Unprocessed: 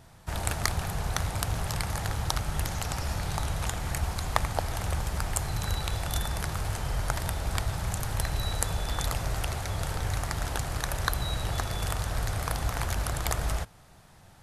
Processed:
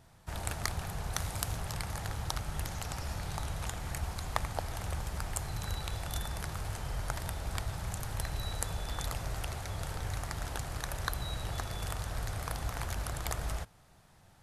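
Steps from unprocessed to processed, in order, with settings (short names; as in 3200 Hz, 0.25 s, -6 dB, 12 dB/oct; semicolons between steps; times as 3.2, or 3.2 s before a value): 1.13–1.56 high shelf 4700 Hz +6 dB; gain -6.5 dB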